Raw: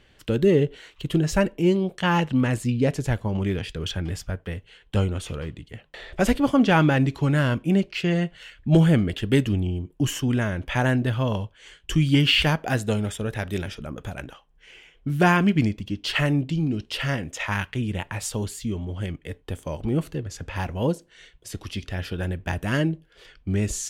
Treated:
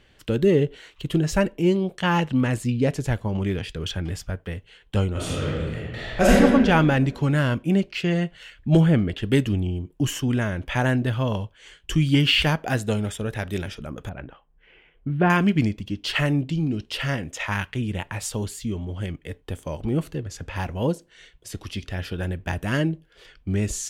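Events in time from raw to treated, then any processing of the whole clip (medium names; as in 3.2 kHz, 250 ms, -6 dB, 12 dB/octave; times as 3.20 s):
5.12–6.34 s: reverb throw, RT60 1.6 s, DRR -7 dB
8.80–9.22 s: treble shelf 4.3 kHz -> 7.1 kHz -11 dB
14.09–15.30 s: distance through air 480 m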